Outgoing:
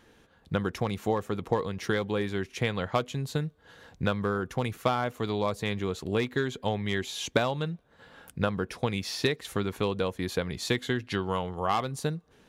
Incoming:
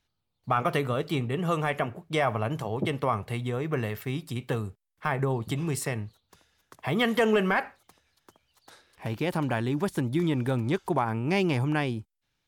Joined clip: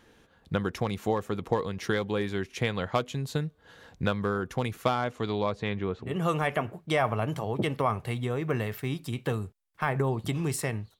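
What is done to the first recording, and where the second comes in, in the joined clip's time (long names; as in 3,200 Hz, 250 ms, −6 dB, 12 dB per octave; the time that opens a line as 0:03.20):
outgoing
0:04.93–0:06.17: low-pass filter 11,000 Hz → 1,400 Hz
0:06.08: continue with incoming from 0:01.31, crossfade 0.18 s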